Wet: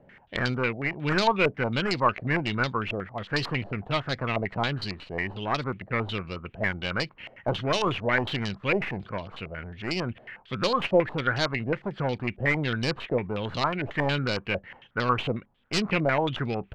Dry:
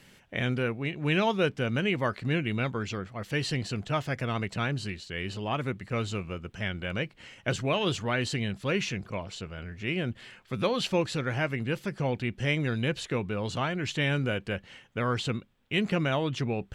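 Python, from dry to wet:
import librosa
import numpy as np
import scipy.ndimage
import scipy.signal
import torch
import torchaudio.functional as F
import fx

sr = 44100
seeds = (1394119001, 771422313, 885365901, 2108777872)

y = fx.tracing_dist(x, sr, depth_ms=0.37)
y = fx.filter_held_lowpass(y, sr, hz=11.0, low_hz=650.0, high_hz=4400.0)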